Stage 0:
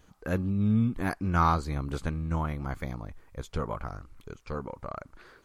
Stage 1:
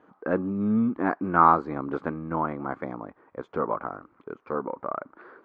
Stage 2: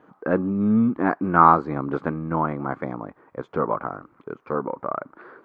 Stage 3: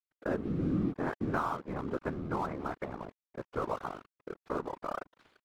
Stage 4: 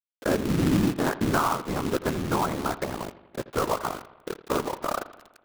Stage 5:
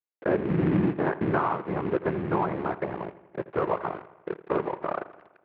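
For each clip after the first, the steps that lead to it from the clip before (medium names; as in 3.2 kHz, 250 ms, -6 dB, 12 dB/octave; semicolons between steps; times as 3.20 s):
Chebyshev band-pass 280–1300 Hz, order 2; trim +8 dB
peaking EQ 140 Hz +5 dB 0.64 oct; trim +3.5 dB
compression 6:1, threshold -20 dBFS, peak gain reduction 12 dB; crossover distortion -41 dBFS; whisper effect; trim -7 dB
companded quantiser 4-bit; bucket-brigade echo 83 ms, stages 2048, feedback 59%, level -16.5 dB; trim +8 dB
cabinet simulation 110–2200 Hz, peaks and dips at 170 Hz +3 dB, 250 Hz -8 dB, 370 Hz +4 dB, 1.3 kHz -5 dB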